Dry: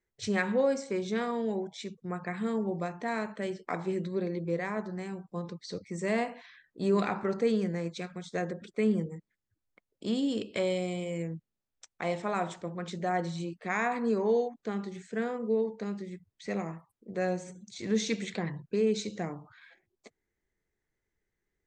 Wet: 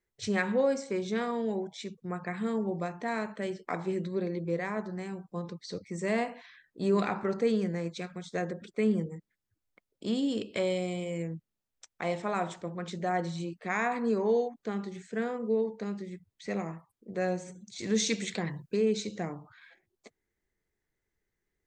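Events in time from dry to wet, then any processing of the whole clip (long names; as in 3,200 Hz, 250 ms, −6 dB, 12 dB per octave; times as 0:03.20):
0:17.78–0:18.77: high-shelf EQ 4,300 Hz +9.5 dB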